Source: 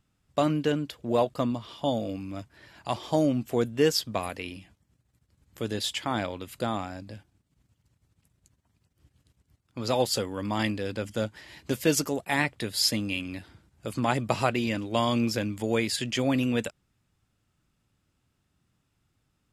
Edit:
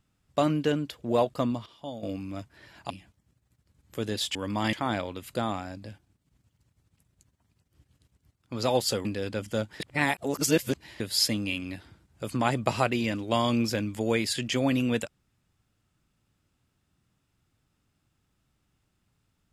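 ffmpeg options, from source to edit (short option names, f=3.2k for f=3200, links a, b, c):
-filter_complex "[0:a]asplit=9[a][b][c][d][e][f][g][h][i];[a]atrim=end=1.662[j];[b]atrim=start=1.658:end=2.032,asetpts=PTS-STARTPTS,volume=-11dB[k];[c]atrim=start=2.028:end=2.902[l];[d]atrim=start=4.528:end=5.982[m];[e]atrim=start=10.298:end=10.682[n];[f]atrim=start=5.978:end=10.302[o];[g]atrim=start=10.678:end=11.432[p];[h]atrim=start=11.428:end=12.632,asetpts=PTS-STARTPTS,areverse[q];[i]atrim=start=12.628[r];[j][k]acrossfade=d=0.004:c1=hsin:c2=hsin[s];[s][l]acrossfade=d=0.004:c1=hsin:c2=hsin[t];[t][m]acrossfade=d=0.004:c1=hsin:c2=hsin[u];[u][n]acrossfade=d=0.004:c1=hsin:c2=hsin[v];[v][o]acrossfade=d=0.004:c1=hsin:c2=hsin[w];[w][p]acrossfade=d=0.004:c1=hsin:c2=hsin[x];[x][q]acrossfade=d=0.004:c1=hsin:c2=hsin[y];[y][r]acrossfade=d=0.004:c1=hsin:c2=hsin"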